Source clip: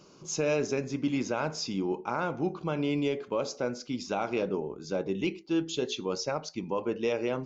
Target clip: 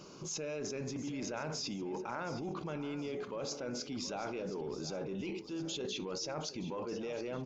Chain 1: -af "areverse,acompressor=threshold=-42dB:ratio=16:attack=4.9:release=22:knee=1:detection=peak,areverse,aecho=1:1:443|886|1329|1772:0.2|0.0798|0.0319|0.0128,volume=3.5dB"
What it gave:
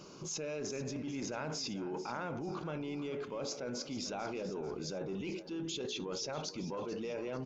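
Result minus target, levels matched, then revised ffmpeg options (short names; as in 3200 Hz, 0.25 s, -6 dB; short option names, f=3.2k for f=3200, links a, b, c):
echo 0.277 s early
-af "areverse,acompressor=threshold=-42dB:ratio=16:attack=4.9:release=22:knee=1:detection=peak,areverse,aecho=1:1:720|1440|2160|2880:0.2|0.0798|0.0319|0.0128,volume=3.5dB"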